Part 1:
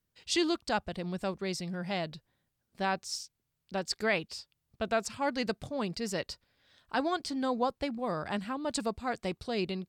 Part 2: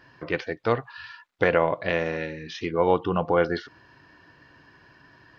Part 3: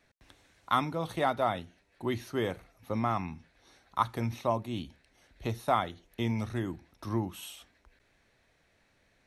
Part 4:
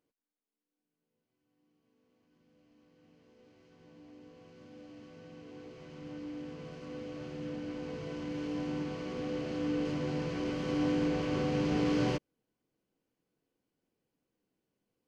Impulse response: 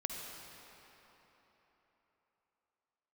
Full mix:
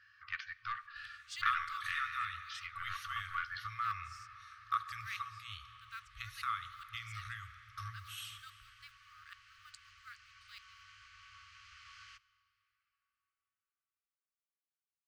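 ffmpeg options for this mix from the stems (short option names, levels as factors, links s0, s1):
-filter_complex "[0:a]acrusher=bits=7:mode=log:mix=0:aa=0.000001,aeval=exprs='val(0)*pow(10,-24*if(lt(mod(-2.4*n/s,1),2*abs(-2.4)/1000),1-mod(-2.4*n/s,1)/(2*abs(-2.4)/1000),(mod(-2.4*n/s,1)-2*abs(-2.4)/1000)/(1-2*abs(-2.4)/1000))/20)':c=same,adelay=1000,volume=0.299[s0];[1:a]equalizer=f=340:w=0.45:g=7.5,aeval=exprs='(tanh(2*val(0)+0.2)-tanh(0.2))/2':c=same,volume=0.299,asplit=2[s1][s2];[s2]volume=0.168[s3];[2:a]highshelf=f=3900:g=-10.5,acompressor=threshold=0.0282:ratio=6,adelay=750,volume=1,asplit=2[s4][s5];[s5]volume=0.631[s6];[3:a]volume=0.168,asplit=2[s7][s8];[s8]volume=0.178[s9];[4:a]atrim=start_sample=2205[s10];[s3][s6][s9]amix=inputs=3:normalize=0[s11];[s11][s10]afir=irnorm=-1:irlink=0[s12];[s0][s1][s4][s7][s12]amix=inputs=5:normalize=0,afftfilt=real='re*(1-between(b*sr/4096,110,1100))':imag='im*(1-between(b*sr/4096,110,1100))':win_size=4096:overlap=0.75,lowshelf=f=560:t=q:w=1.5:g=-10"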